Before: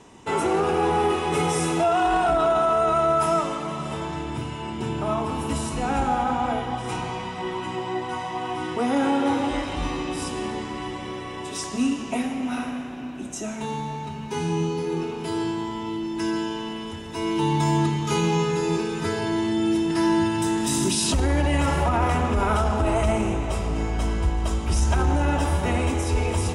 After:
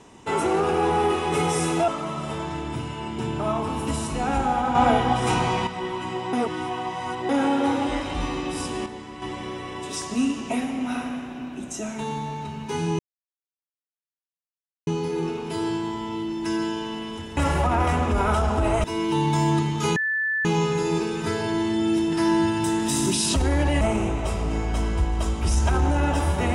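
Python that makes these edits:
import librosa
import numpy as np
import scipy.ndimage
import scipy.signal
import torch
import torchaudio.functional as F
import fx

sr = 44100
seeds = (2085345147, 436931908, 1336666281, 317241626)

y = fx.edit(x, sr, fx.cut(start_s=1.88, length_s=1.62),
    fx.clip_gain(start_s=6.37, length_s=0.92, db=7.0),
    fx.reverse_span(start_s=7.95, length_s=0.96),
    fx.clip_gain(start_s=10.48, length_s=0.36, db=-7.0),
    fx.insert_silence(at_s=14.61, length_s=1.88),
    fx.insert_tone(at_s=18.23, length_s=0.49, hz=1750.0, db=-21.5),
    fx.move(start_s=21.59, length_s=1.47, to_s=17.11), tone=tone)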